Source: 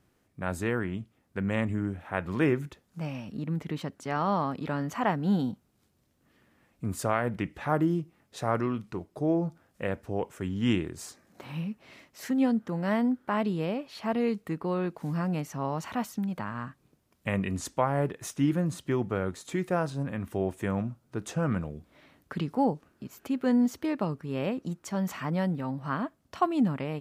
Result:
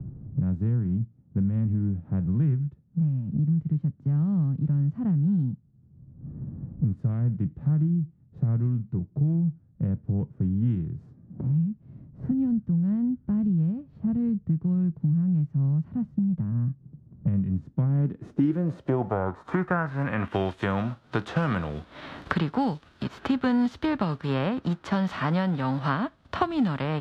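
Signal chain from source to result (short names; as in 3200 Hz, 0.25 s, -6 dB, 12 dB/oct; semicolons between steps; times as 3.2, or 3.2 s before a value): spectral whitening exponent 0.6; resonant high shelf 1900 Hz -7.5 dB, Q 1.5; low-pass sweep 140 Hz -> 3500 Hz, 17.66–20.45; bell 11000 Hz +3.5 dB 0.51 oct; three-band squash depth 100%; gain +3.5 dB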